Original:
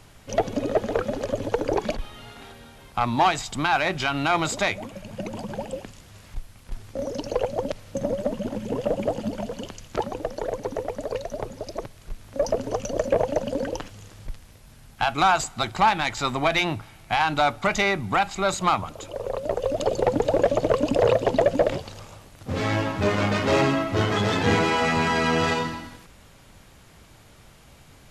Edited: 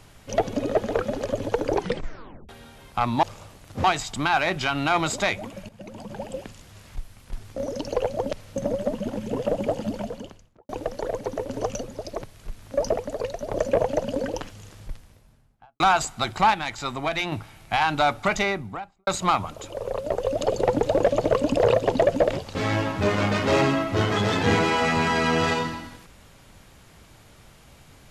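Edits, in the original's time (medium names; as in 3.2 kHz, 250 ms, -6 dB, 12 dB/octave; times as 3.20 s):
1.77 s: tape stop 0.72 s
5.08–5.84 s: fade in, from -13.5 dB
9.34–10.08 s: studio fade out
10.88–11.45 s: swap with 12.59–12.93 s
14.12–15.19 s: studio fade out
15.93–16.71 s: gain -4.5 dB
17.67–18.46 s: studio fade out
21.94–22.55 s: move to 3.23 s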